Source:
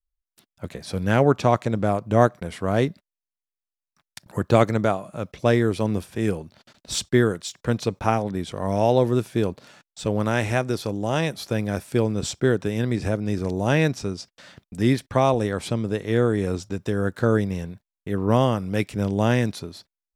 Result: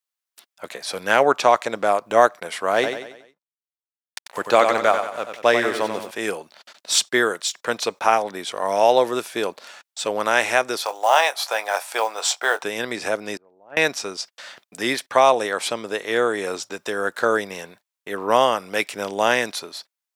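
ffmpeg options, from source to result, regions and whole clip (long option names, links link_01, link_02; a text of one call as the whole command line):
ffmpeg -i in.wav -filter_complex "[0:a]asettb=1/sr,asplit=3[link_01][link_02][link_03];[link_01]atrim=end=2.744[link_04];[link_02]atrim=start=2.74:end=6.11,asetpts=PTS-STARTPTS,afade=type=in:duration=0.004:curve=qsin,afade=type=out:start_time=3.366:duration=0.004:curve=qsin,highshelf=frequency=9600:gain=-6.5,aeval=exprs='sgn(val(0))*max(abs(val(0))-0.00501,0)':channel_layout=same,aecho=1:1:92|184|276|368|460:0.447|0.205|0.0945|0.0435|0.02,atrim=end_sample=148617[link_05];[link_03]atrim=start=6.106[link_06];[link_04][link_05]acrossfade=duration=0.004:curve1=hsin:curve2=qsin[link_07];[link_07][link_06]acrossfade=duration=0.004:curve1=qsin:curve2=hsin,asettb=1/sr,asplit=3[link_08][link_09][link_10];[link_08]atrim=end=10.844[link_11];[link_09]atrim=start=10.84:end=12.63,asetpts=PTS-STARTPTS,afade=type=in:duration=0.004:curve=qsin,afade=type=out:start_time=1.786:duration=0.004:curve=qsin,highpass=frequency=770:width_type=q:width=2.4,acrusher=bits=7:mode=log:mix=0:aa=0.000001,asplit=2[link_12][link_13];[link_13]adelay=22,volume=-12dB[link_14];[link_12][link_14]amix=inputs=2:normalize=0,atrim=end_sample=78939[link_15];[link_10]atrim=start=12.626[link_16];[link_11][link_15]acrossfade=duration=0.004:curve1=hsin:curve2=qsin[link_17];[link_17][link_16]acrossfade=duration=0.004:curve1=qsin:curve2=hsin,asettb=1/sr,asplit=3[link_18][link_19][link_20];[link_18]atrim=end=13.374[link_21];[link_19]atrim=start=13.37:end=13.77,asetpts=PTS-STARTPTS,afade=type=in:duration=0.004:curve=qsin,afade=type=out:start_time=0.396:duration=0.004:curve=qsin,lowpass=1100,agate=range=-28dB:threshold=-17dB:ratio=16:release=100:detection=peak[link_22];[link_20]atrim=start=13.766[link_23];[link_21][link_22]acrossfade=duration=0.004:curve1=hsin:curve2=qsin[link_24];[link_24][link_23]acrossfade=duration=0.004:curve1=qsin:curve2=hsin,highpass=670,alimiter=level_in=9.5dB:limit=-1dB:release=50:level=0:latency=1,volume=-1dB" out.wav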